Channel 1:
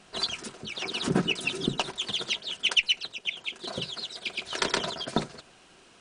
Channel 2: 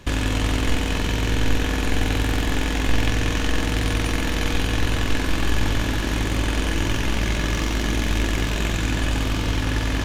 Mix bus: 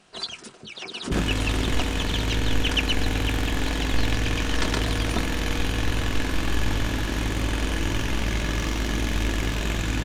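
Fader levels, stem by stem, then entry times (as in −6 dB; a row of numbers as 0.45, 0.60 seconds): −2.5, −3.0 decibels; 0.00, 1.05 seconds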